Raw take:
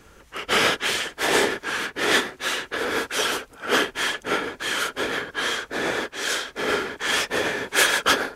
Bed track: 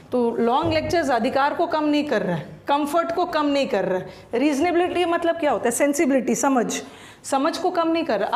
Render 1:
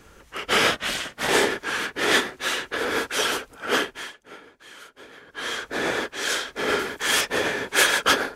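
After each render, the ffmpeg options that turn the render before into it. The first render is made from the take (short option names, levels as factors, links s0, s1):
-filter_complex "[0:a]asettb=1/sr,asplit=3[s0][s1][s2];[s0]atrim=end=0.714[s3];[s1]atrim=start=0.71:end=1.29,asetpts=PTS-STARTPTS,afade=t=in:d=0.004:c=qsin,afade=t=out:st=0.576:d=0.004:c=qsin,aeval=exprs='val(0)*sin(2*PI*180*n/s)':c=same[s4];[s2]atrim=start=1.286[s5];[s3][s4]acrossfade=d=0.004:c1=hsin:c2=qsin[s6];[s6][s5]acrossfade=d=0.004:c1=qsin:c2=hsin,asettb=1/sr,asplit=3[s7][s8][s9];[s7]atrim=end=6.794[s10];[s8]atrim=start=6.79:end=7.21,asetpts=PTS-STARTPTS,afade=t=in:d=0.004:c=qsin,afade=t=out:st=0.416:d=0.004:c=qsin,highshelf=f=8000:g=11[s11];[s9]atrim=start=7.206[s12];[s10][s11]acrossfade=d=0.004:c1=hsin:c2=qsin[s13];[s13][s12]acrossfade=d=0.004:c1=qsin:c2=hsin,asplit=3[s14][s15][s16];[s14]atrim=end=4.14,asetpts=PTS-STARTPTS,afade=t=out:st=3.65:d=0.49:silence=0.105925[s17];[s15]atrim=start=4.14:end=5.21,asetpts=PTS-STARTPTS,volume=0.106[s18];[s16]atrim=start=5.21,asetpts=PTS-STARTPTS,afade=t=in:d=0.49:silence=0.105925[s19];[s17][s18][s19]concat=n=3:v=0:a=1"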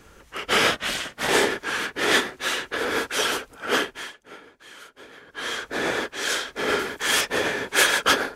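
-af anull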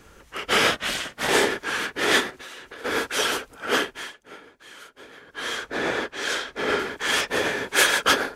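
-filter_complex "[0:a]asplit=3[s0][s1][s2];[s0]afade=t=out:st=2.3:d=0.02[s3];[s1]acompressor=threshold=0.0141:ratio=8:attack=3.2:release=140:knee=1:detection=peak,afade=t=in:st=2.3:d=0.02,afade=t=out:st=2.84:d=0.02[s4];[s2]afade=t=in:st=2.84:d=0.02[s5];[s3][s4][s5]amix=inputs=3:normalize=0,asettb=1/sr,asplit=3[s6][s7][s8];[s6]atrim=end=5.664[s9];[s7]atrim=start=5.66:end=7.28,asetpts=PTS-STARTPTS,afade=t=in:d=0.004:c=qsin,afade=t=out:st=1.616:d=0.004:c=qsin,highshelf=f=7300:g=-10[s10];[s8]atrim=start=7.276[s11];[s9][s10]acrossfade=d=0.004:c1=hsin:c2=qsin[s12];[s12][s11]acrossfade=d=0.004:c1=qsin:c2=hsin"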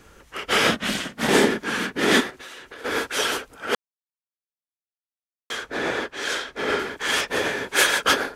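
-filter_complex "[0:a]asettb=1/sr,asplit=3[s0][s1][s2];[s0]atrim=end=0.664[s3];[s1]atrim=start=0.66:end=2.21,asetpts=PTS-STARTPTS,afade=t=in:d=0.004:c=qsin,afade=t=out:st=1.546:d=0.004:c=qsin,equalizer=f=210:w=1.3:g=13.5[s4];[s2]atrim=start=2.206[s5];[s3][s4]acrossfade=d=0.004:c1=hsin:c2=qsin[s6];[s6][s5]acrossfade=d=0.004:c1=qsin:c2=hsin,asplit=3[s7][s8][s9];[s7]atrim=end=3.75,asetpts=PTS-STARTPTS,afade=t=out:st=3.746:d=0.004:c=hsin[s10];[s8]atrim=start=3.75:end=5.5,asetpts=PTS-STARTPTS,volume=0[s11];[s9]atrim=start=5.5,asetpts=PTS-STARTPTS,afade=t=in:d=0.004:c=hsin[s12];[s10][s11][s12]concat=n=3:v=0:a=1"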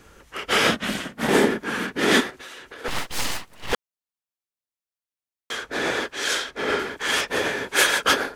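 -filter_complex "[0:a]asettb=1/sr,asplit=3[s0][s1][s2];[s0]atrim=end=0.854[s3];[s1]atrim=start=0.85:end=1.88,asetpts=PTS-STARTPTS,afade=t=in:d=0.004:c=qsin,afade=t=out:st=1.026:d=0.004:c=qsin,equalizer=f=5100:t=o:w=2.2:g=-5[s4];[s2]atrim=start=1.876[s5];[s3][s4]acrossfade=d=0.004:c1=hsin:c2=qsin[s6];[s6][s5]acrossfade=d=0.004:c1=qsin:c2=hsin,asettb=1/sr,asplit=3[s7][s8][s9];[s7]atrim=end=2.884[s10];[s8]atrim=start=2.88:end=3.73,asetpts=PTS-STARTPTS,afade=t=in:d=0.004:c=qsin,afade=t=out:st=0.846:d=0.004:c=qsin,aeval=exprs='abs(val(0))':c=same[s11];[s9]atrim=start=3.726[s12];[s10][s11]acrossfade=d=0.004:c1=hsin:c2=qsin[s13];[s13][s12]acrossfade=d=0.004:c1=qsin:c2=hsin,asettb=1/sr,asplit=3[s14][s15][s16];[s14]atrim=end=5.714[s17];[s15]atrim=start=5.71:end=6.51,asetpts=PTS-STARTPTS,afade=t=in:d=0.004:c=qsin,afade=t=out:st=0.796:d=0.004:c=qsin,highshelf=f=3500:g=7[s18];[s16]atrim=start=6.506[s19];[s17][s18]acrossfade=d=0.004:c1=hsin:c2=qsin[s20];[s20][s19]acrossfade=d=0.004:c1=qsin:c2=hsin"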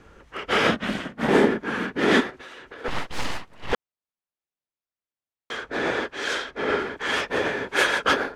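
-af "aemphasis=mode=reproduction:type=75fm"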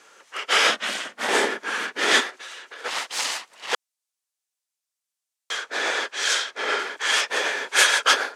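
-af "highpass=580,equalizer=f=7700:w=0.47:g=14"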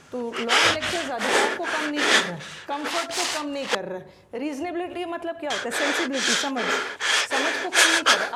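-filter_complex "[1:a]volume=0.335[s0];[0:a][s0]amix=inputs=2:normalize=0"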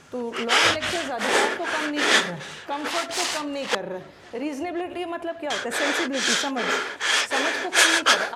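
-filter_complex "[0:a]asplit=2[s0][s1];[s1]adelay=1061,lowpass=f=2700:p=1,volume=0.0668,asplit=2[s2][s3];[s3]adelay=1061,lowpass=f=2700:p=1,volume=0.55,asplit=2[s4][s5];[s5]adelay=1061,lowpass=f=2700:p=1,volume=0.55,asplit=2[s6][s7];[s7]adelay=1061,lowpass=f=2700:p=1,volume=0.55[s8];[s0][s2][s4][s6][s8]amix=inputs=5:normalize=0"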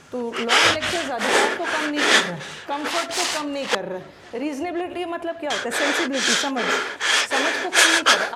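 -af "volume=1.33,alimiter=limit=0.794:level=0:latency=1"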